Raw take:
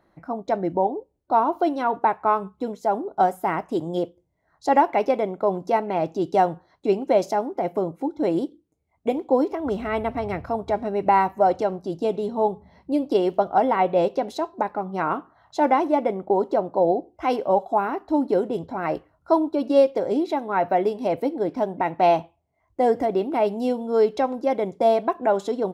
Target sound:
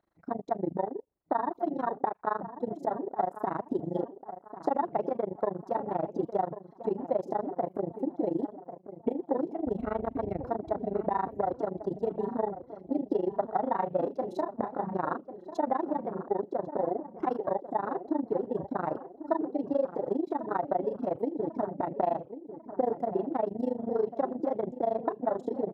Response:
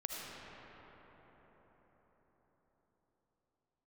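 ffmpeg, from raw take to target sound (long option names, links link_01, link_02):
-filter_complex "[0:a]afwtdn=0.0562,acompressor=threshold=-32dB:ratio=3,tremolo=f=25:d=0.974,asettb=1/sr,asplit=3[link_01][link_02][link_03];[link_01]atrim=end=13.604[link_04];[link_02]atrim=start=13.6:end=14.93,asetpts=PTS-STARTPTS,afade=type=in:duration=0.004:curve=qsin,afade=type=out:start_time=1.326:duration=0.004:curve=qsin,asplit=2[link_05][link_06];[link_06]adelay=33,volume=-7dB[link_07];[link_05][link_07]amix=inputs=2:normalize=0,atrim=end_sample=58653[link_08];[link_03]atrim=start=14.926[link_09];[link_04][link_08]acrossfade=duration=0.004:curve1=hsin:curve2=qsin[link_10];[link_10][link_09]acrossfade=duration=0.004:curve1=qsin:curve2=hsin,asplit=2[link_11][link_12];[link_12]adelay=1095,lowpass=frequency=1400:poles=1,volume=-12dB,asplit=2[link_13][link_14];[link_14]adelay=1095,lowpass=frequency=1400:poles=1,volume=0.47,asplit=2[link_15][link_16];[link_16]adelay=1095,lowpass=frequency=1400:poles=1,volume=0.47,asplit=2[link_17][link_18];[link_18]adelay=1095,lowpass=frequency=1400:poles=1,volume=0.47,asplit=2[link_19][link_20];[link_20]adelay=1095,lowpass=frequency=1400:poles=1,volume=0.47[link_21];[link_11][link_13][link_15][link_17][link_19][link_21]amix=inputs=6:normalize=0,volume=5.5dB"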